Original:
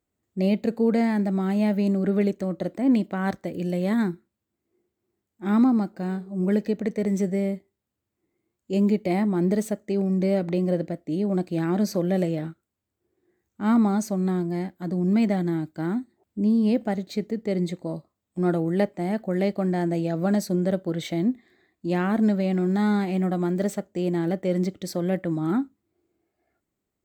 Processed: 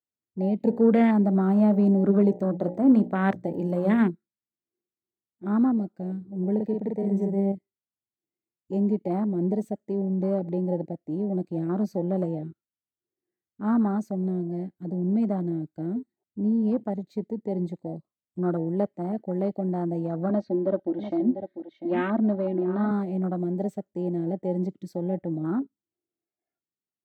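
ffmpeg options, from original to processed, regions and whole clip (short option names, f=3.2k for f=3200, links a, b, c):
-filter_complex "[0:a]asettb=1/sr,asplit=3[a][b][c];[a]atrim=end=0.604[d];[b]atrim=start=0.6:end=4.1,asetpts=PTS-STARTPTS,afade=t=in:d=0.004:c=qsin,afade=t=out:st=3.496:d=0.004:c=qsin,bandreject=f=60:t=h:w=6,bandreject=f=120:t=h:w=6,bandreject=f=180:t=h:w=6,bandreject=f=240:t=h:w=6,bandreject=f=300:t=h:w=6,bandreject=f=360:t=h:w=6,bandreject=f=420:t=h:w=6,bandreject=f=480:t=h:w=6,bandreject=f=540:t=h:w=6,bandreject=f=600:t=h:w=6,acontrast=55[e];[c]atrim=start=4.096[f];[d][e]acrossfade=d=0.004:c1=hsin:c2=qsin[g];[g][f]acrossfade=d=0.004:c1=qsin:c2=hsin,asettb=1/sr,asplit=3[h][i][j];[h]atrim=end=6.554[k];[i]atrim=start=6.55:end=7.52,asetpts=PTS-STARTPTS,afade=t=in:d=0.004:c=qsin,afade=t=out:st=0.966:d=0.004:c=qsin,equalizer=f=6k:w=1.9:g=-6,asplit=2[l][m];[m]adelay=46,volume=-3dB[n];[l][n]amix=inputs=2:normalize=0,atrim=end_sample=42777[o];[j]atrim=start=7.516[p];[k][o]acrossfade=d=0.004:c1=hsin:c2=qsin[q];[q][p]acrossfade=d=0.004:c1=qsin:c2=hsin,asettb=1/sr,asplit=3[r][s][t];[r]atrim=end=20.294[u];[s]atrim=start=20.29:end=22.91,asetpts=PTS-STARTPTS,afade=t=in:d=0.004:c=qsin,afade=t=out:st=2.616:d=0.004:c=qsin,lowpass=f=4.1k:w=0.5412,lowpass=f=4.1k:w=1.3066,aecho=1:1:3.2:0.9,atrim=end_sample=115542,aecho=1:1:696:0.335,atrim=end_sample=115542[v];[t]atrim=start=22.906[w];[u][v]acrossfade=d=0.004:c1=hsin:c2=qsin[x];[x][w]acrossfade=d=0.004:c1=qsin:c2=hsin,highpass=f=98:w=0.5412,highpass=f=98:w=1.3066,afwtdn=0.0398,volume=-3dB"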